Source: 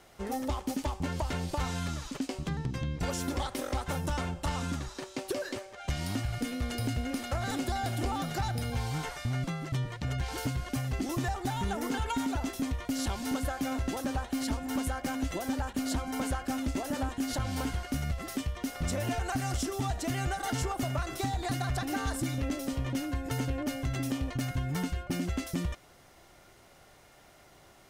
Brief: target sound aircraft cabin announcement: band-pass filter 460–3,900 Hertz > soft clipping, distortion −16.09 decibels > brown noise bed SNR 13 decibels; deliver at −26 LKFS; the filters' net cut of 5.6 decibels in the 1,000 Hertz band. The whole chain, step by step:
band-pass filter 460–3,900 Hz
parametric band 1,000 Hz −7.5 dB
soft clipping −35 dBFS
brown noise bed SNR 13 dB
level +17.5 dB

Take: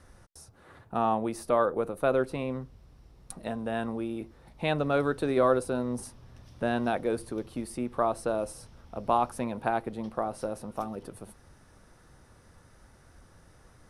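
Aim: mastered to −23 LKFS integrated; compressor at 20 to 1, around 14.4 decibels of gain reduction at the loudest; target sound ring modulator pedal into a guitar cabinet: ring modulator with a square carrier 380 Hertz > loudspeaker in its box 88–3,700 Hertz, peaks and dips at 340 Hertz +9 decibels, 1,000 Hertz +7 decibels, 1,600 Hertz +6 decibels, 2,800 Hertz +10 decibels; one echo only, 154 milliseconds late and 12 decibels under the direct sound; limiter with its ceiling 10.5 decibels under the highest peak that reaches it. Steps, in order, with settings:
downward compressor 20 to 1, threshold −33 dBFS
brickwall limiter −30 dBFS
single-tap delay 154 ms −12 dB
ring modulator with a square carrier 380 Hz
loudspeaker in its box 88–3,700 Hz, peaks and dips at 340 Hz +9 dB, 1,000 Hz +7 dB, 1,600 Hz +6 dB, 2,800 Hz +10 dB
level +16 dB

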